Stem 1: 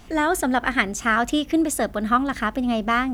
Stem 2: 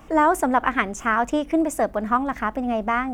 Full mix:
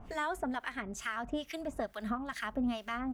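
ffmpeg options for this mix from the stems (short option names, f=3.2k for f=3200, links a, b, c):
-filter_complex "[0:a]equalizer=f=350:t=o:w=0.21:g=-12.5,acrossover=split=1300[a][b];[a]aeval=exprs='val(0)*(1-1/2+1/2*cos(2*PI*2.3*n/s))':c=same[c];[b]aeval=exprs='val(0)*(1-1/2-1/2*cos(2*PI*2.3*n/s))':c=same[d];[c][d]amix=inputs=2:normalize=0,volume=-2dB[e];[1:a]bass=f=250:g=-7,treble=f=4k:g=-8,volume=-1,adelay=4.8,volume=-19dB,asplit=2[f][g];[g]apad=whole_len=138359[h];[e][h]sidechaincompress=threshold=-42dB:ratio=8:attack=29:release=523[i];[i][f]amix=inputs=2:normalize=0,alimiter=level_in=0.5dB:limit=-24dB:level=0:latency=1:release=242,volume=-0.5dB"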